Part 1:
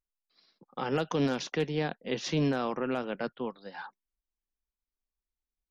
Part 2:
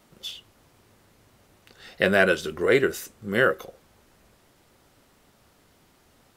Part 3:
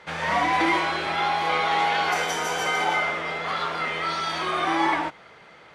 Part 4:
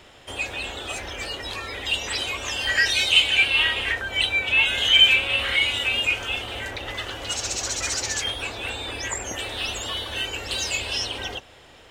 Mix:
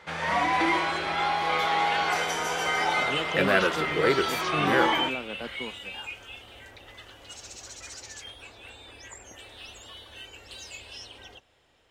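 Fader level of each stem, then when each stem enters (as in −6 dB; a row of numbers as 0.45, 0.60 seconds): −4.0, −4.0, −2.5, −16.0 decibels; 2.20, 1.35, 0.00, 0.00 seconds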